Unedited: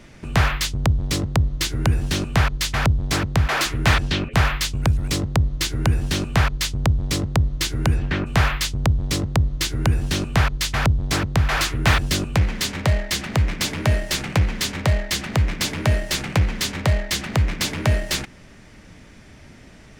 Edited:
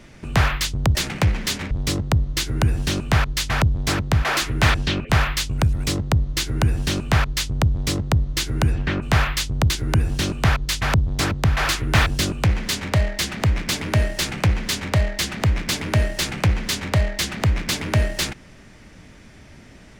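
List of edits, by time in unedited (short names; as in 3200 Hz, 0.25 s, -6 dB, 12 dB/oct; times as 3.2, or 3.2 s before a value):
8.94–9.62 cut
14.09–14.85 copy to 0.95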